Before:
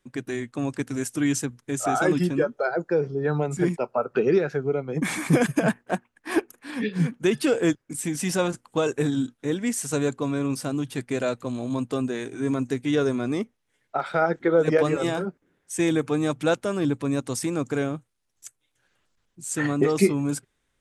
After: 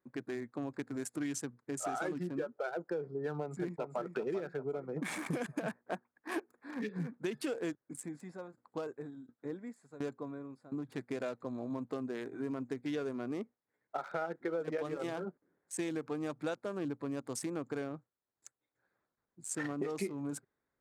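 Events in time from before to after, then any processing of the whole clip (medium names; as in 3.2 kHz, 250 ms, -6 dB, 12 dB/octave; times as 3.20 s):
3.39–4.15 s: echo throw 390 ms, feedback 40%, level -7.5 dB
7.86–10.89 s: sawtooth tremolo in dB decaying 1.4 Hz, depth 19 dB
whole clip: local Wiener filter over 15 samples; high-pass 260 Hz 6 dB/octave; compression 4:1, threshold -29 dBFS; trim -5.5 dB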